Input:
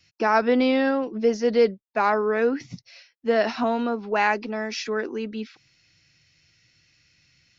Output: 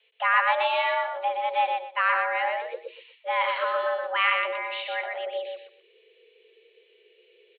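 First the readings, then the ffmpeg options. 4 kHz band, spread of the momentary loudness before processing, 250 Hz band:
+3.0 dB, 12 LU, under -30 dB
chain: -filter_complex "[0:a]aresample=8000,aresample=44100,asubboost=boost=10.5:cutoff=130,afreqshift=350,aecho=1:1:121|242|363:0.631|0.145|0.0334,acrossover=split=220|570|3100[a][b][c][d];[c]crystalizer=i=8.5:c=0[e];[a][b][e][d]amix=inputs=4:normalize=0,volume=-7dB"

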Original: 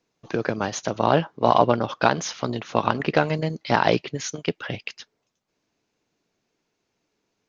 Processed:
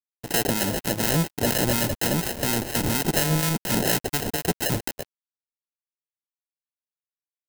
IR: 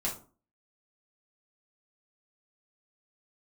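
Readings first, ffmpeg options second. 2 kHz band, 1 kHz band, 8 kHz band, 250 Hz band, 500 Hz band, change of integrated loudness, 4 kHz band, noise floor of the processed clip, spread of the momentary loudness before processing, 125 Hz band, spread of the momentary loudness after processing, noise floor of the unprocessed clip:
-1.0 dB, -9.0 dB, n/a, +0.5 dB, -5.0 dB, 0.0 dB, +4.5 dB, under -85 dBFS, 11 LU, +2.0 dB, 5 LU, -77 dBFS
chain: -filter_complex "[0:a]lowshelf=f=320:g=11.5,acrossover=split=480|2600[a][b][c];[b]acompressor=threshold=-30dB:ratio=4[d];[a][d][c]amix=inputs=3:normalize=0,volume=12dB,asoftclip=hard,volume=-12dB,adynamicsmooth=sensitivity=4.5:basefreq=2.8k,asplit=2[e][f];[f]highpass=f=720:p=1,volume=25dB,asoftclip=type=tanh:threshold=-12dB[g];[e][g]amix=inputs=2:normalize=0,lowpass=f=5.3k:p=1,volume=-6dB,acrusher=samples=38:mix=1:aa=0.000001,acrossover=split=870[h][i];[h]aeval=exprs='val(0)*(1-0.5/2+0.5/2*cos(2*PI*4.2*n/s))':c=same[j];[i]aeval=exprs='val(0)*(1-0.5/2-0.5/2*cos(2*PI*4.2*n/s))':c=same[k];[j][k]amix=inputs=2:normalize=0,aeval=exprs='sgn(val(0))*max(abs(val(0))-0.0119,0)':c=same,crystalizer=i=2.5:c=0,volume=-2.5dB"

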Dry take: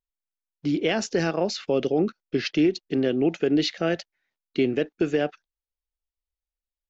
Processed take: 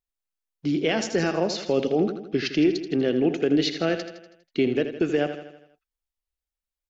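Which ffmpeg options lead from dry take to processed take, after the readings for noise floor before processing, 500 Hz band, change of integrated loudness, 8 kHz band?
under -85 dBFS, +0.5 dB, +0.5 dB, n/a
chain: -af "aecho=1:1:81|162|243|324|405|486:0.316|0.171|0.0922|0.0498|0.0269|0.0145"

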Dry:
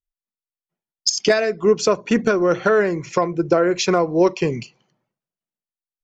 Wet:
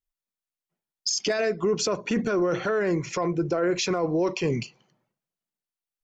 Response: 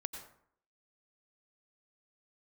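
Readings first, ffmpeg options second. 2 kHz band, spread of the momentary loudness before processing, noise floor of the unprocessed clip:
-7.0 dB, 5 LU, under -85 dBFS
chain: -af "alimiter=limit=-17dB:level=0:latency=1:release=13"

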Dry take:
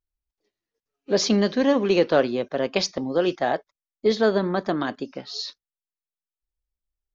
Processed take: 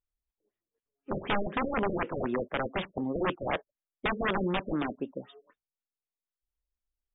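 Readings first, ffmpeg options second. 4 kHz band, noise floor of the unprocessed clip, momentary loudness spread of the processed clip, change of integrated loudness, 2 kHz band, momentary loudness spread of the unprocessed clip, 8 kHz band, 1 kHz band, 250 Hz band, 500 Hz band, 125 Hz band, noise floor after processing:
-12.5 dB, under -85 dBFS, 7 LU, -9.0 dB, -3.5 dB, 12 LU, n/a, -4.0 dB, -9.0 dB, -11.5 dB, -5.5 dB, under -85 dBFS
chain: -af "aeval=exprs='(mod(7.5*val(0)+1,2)-1)/7.5':c=same,afftfilt=real='re*lt(b*sr/1024,590*pow(3800/590,0.5+0.5*sin(2*PI*4*pts/sr)))':imag='im*lt(b*sr/1024,590*pow(3800/590,0.5+0.5*sin(2*PI*4*pts/sr)))':win_size=1024:overlap=0.75,volume=-3.5dB"

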